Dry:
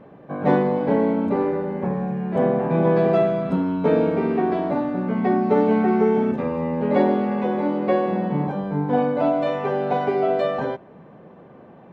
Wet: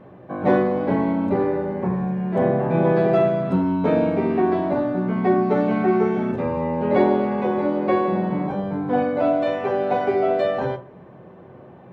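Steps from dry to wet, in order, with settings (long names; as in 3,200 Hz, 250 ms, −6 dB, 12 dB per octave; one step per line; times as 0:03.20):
on a send: low shelf with overshoot 150 Hz +8 dB, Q 3 + convolution reverb RT60 0.35 s, pre-delay 3 ms, DRR 6.5 dB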